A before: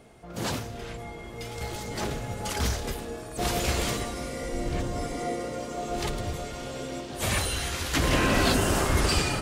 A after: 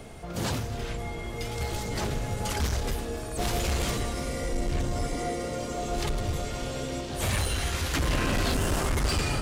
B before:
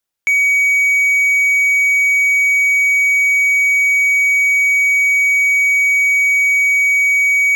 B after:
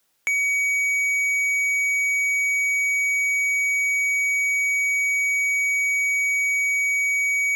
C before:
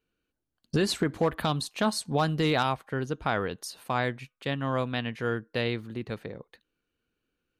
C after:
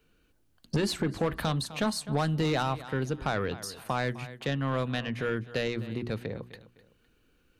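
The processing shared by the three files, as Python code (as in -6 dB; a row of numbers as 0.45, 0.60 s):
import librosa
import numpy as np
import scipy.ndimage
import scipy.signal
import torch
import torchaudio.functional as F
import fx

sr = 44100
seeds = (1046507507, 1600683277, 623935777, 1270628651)

y = fx.low_shelf(x, sr, hz=110.0, db=8.0)
y = fx.echo_feedback(y, sr, ms=255, feedback_pct=25, wet_db=-20)
y = 10.0 ** (-20.5 / 20.0) * np.tanh(y / 10.0 ** (-20.5 / 20.0))
y = fx.hum_notches(y, sr, base_hz=60, count=6)
y = fx.band_squash(y, sr, depth_pct=40)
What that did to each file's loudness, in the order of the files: -1.5, -9.0, -1.5 LU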